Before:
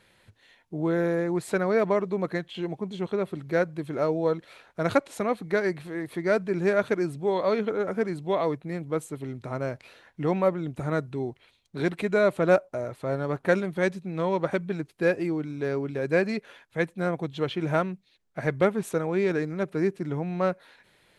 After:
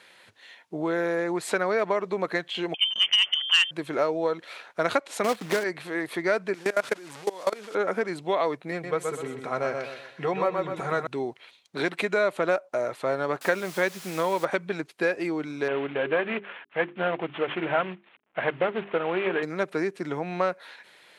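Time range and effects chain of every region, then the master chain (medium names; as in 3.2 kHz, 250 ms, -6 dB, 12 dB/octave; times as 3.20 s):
2.74–3.71 s: frequency inversion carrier 3.3 kHz + transformer saturation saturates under 2.7 kHz
5.24–5.64 s: block-companded coder 3-bit + bass shelf 480 Hz +9 dB
6.54–7.75 s: one-bit delta coder 64 kbps, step -32 dBFS + level held to a coarse grid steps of 22 dB
8.71–11.07 s: treble shelf 8.5 kHz -5 dB + comb of notches 300 Hz + feedback delay 124 ms, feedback 37%, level -6 dB
13.41–14.45 s: steep low-pass 7.3 kHz + word length cut 8-bit, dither triangular
15.68–19.43 s: CVSD coder 16 kbps + hum notches 50/100/150/200/250/300/350/400 Hz + loudspeaker Doppler distortion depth 0.11 ms
whole clip: compression 6:1, threshold -26 dBFS; frequency weighting A; trim +8 dB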